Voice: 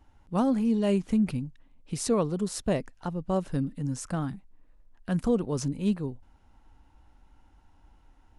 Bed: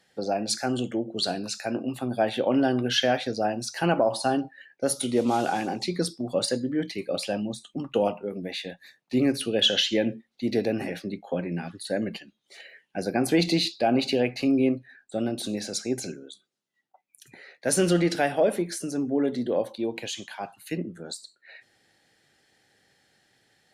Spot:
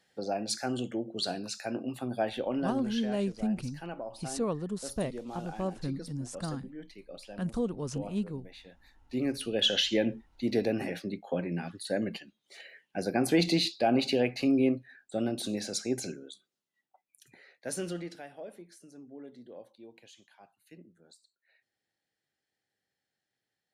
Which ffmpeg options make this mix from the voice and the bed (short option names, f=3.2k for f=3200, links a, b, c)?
-filter_complex "[0:a]adelay=2300,volume=-6dB[a];[1:a]volume=9dB,afade=t=out:st=2.14:d=0.89:silence=0.251189,afade=t=in:st=8.64:d=1.32:silence=0.188365,afade=t=out:st=16.35:d=1.88:silence=0.112202[b];[a][b]amix=inputs=2:normalize=0"